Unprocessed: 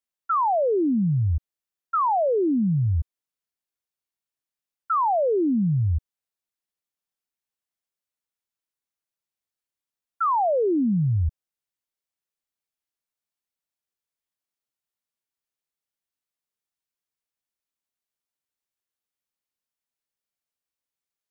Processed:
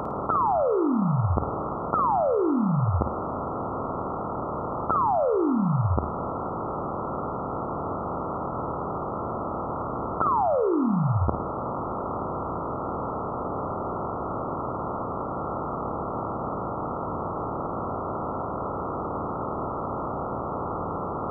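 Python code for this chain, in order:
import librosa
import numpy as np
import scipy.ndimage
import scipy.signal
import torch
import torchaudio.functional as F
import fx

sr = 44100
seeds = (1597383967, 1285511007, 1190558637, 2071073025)

y = fx.bin_compress(x, sr, power=0.2)
y = fx.room_flutter(y, sr, wall_m=9.2, rt60_s=0.48)
y = y * 10.0 ** (-5.0 / 20.0)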